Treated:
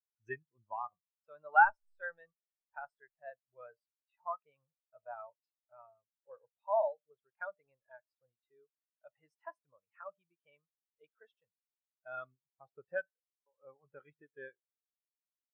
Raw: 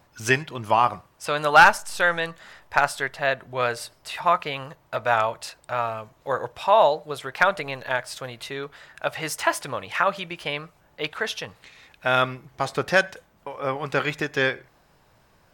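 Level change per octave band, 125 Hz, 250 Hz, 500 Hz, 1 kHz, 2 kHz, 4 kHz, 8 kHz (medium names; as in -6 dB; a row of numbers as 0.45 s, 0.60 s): under -30 dB, under -30 dB, -17.5 dB, -14.5 dB, -16.5 dB, under -40 dB, under -40 dB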